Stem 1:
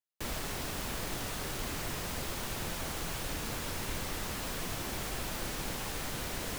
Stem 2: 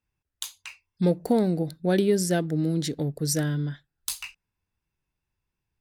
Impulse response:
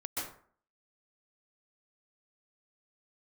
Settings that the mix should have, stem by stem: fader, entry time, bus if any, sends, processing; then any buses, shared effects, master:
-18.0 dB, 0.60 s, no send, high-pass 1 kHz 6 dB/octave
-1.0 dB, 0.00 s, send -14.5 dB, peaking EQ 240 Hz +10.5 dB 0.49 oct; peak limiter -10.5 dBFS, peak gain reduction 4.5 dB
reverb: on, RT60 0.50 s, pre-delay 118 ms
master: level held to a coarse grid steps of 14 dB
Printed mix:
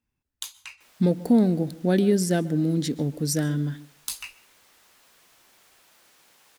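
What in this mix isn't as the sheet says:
stem 2: send -14.5 dB -> -21 dB; master: missing level held to a coarse grid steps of 14 dB

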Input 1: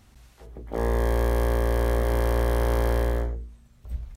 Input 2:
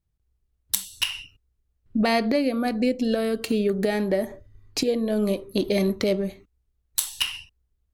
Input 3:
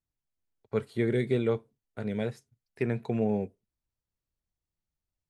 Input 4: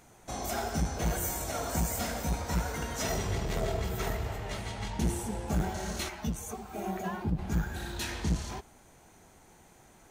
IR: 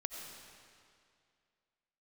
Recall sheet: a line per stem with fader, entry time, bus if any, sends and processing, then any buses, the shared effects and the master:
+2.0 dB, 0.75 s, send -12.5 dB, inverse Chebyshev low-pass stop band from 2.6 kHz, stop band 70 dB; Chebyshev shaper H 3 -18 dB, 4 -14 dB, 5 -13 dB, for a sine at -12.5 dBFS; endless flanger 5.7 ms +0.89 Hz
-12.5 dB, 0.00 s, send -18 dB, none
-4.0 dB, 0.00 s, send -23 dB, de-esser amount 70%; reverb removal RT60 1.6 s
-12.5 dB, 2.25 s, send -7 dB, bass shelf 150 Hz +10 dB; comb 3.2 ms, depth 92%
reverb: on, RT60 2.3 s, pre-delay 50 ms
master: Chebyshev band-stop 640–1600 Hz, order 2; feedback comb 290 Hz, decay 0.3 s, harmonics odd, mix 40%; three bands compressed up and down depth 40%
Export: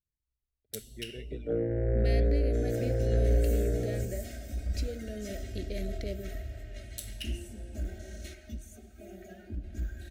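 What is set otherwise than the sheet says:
stem 3 -4.0 dB -> -11.0 dB; master: missing three bands compressed up and down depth 40%

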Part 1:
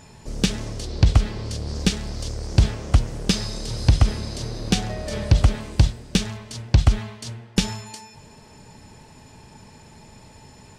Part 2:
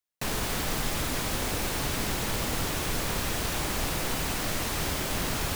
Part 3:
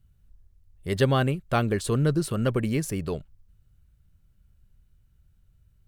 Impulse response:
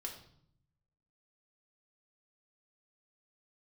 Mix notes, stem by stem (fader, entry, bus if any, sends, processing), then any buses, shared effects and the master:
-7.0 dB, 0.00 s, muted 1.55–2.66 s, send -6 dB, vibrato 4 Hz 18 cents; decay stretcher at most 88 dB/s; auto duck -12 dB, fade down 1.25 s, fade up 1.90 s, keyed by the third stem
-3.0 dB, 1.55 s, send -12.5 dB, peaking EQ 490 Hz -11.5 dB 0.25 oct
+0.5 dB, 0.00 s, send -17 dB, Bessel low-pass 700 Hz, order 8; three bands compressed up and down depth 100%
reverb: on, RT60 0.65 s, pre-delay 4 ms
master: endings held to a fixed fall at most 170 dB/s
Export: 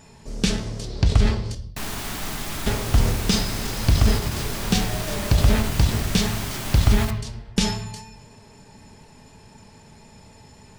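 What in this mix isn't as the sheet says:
stem 3: muted; reverb return +8.0 dB

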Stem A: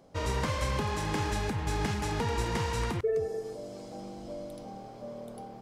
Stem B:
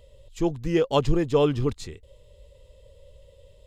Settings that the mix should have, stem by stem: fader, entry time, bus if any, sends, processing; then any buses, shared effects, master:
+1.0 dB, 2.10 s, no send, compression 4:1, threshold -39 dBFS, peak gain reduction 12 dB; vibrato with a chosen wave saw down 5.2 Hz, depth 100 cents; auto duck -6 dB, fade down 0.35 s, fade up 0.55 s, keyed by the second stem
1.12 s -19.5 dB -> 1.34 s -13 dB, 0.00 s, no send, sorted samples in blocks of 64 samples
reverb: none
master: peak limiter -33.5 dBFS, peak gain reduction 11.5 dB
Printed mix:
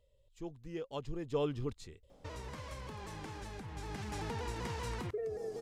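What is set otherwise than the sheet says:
stem B: missing sorted samples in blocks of 64 samples; master: missing peak limiter -33.5 dBFS, peak gain reduction 11.5 dB

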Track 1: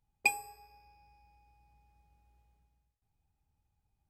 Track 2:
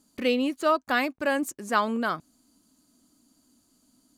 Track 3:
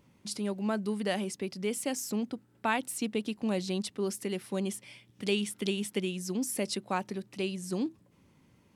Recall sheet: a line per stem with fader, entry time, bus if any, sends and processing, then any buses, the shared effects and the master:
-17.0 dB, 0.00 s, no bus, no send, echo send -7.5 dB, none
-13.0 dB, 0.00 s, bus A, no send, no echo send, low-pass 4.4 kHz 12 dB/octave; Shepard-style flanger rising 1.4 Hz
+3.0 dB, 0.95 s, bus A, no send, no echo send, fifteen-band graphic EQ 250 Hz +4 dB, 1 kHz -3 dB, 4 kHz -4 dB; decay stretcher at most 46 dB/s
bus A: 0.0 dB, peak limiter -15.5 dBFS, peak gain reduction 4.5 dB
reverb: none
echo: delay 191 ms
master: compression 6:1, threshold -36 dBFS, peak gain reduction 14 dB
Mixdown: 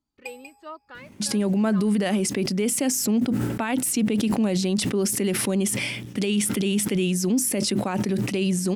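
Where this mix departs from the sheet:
stem 1 -17.0 dB -> -10.5 dB; stem 3 +3.0 dB -> +12.5 dB; master: missing compression 6:1, threshold -36 dBFS, peak gain reduction 14 dB

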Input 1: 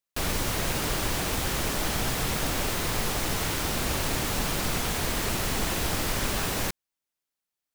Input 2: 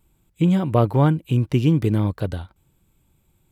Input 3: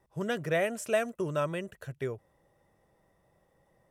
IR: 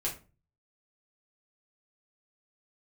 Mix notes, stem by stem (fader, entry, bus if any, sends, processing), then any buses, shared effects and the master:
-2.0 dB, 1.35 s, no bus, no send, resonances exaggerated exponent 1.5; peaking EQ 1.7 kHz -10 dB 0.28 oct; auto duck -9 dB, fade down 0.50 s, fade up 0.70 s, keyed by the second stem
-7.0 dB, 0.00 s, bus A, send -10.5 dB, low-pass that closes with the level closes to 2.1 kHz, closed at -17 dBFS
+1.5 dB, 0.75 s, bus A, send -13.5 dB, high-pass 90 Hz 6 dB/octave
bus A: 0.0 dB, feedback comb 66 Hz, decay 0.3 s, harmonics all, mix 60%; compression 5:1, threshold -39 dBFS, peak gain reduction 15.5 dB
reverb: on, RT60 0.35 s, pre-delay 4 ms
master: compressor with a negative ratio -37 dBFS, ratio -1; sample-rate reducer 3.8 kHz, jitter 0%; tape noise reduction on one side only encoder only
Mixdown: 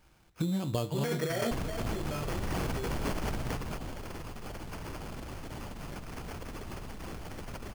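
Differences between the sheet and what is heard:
stem 1 -2.0 dB -> +4.5 dB; stem 2: send off

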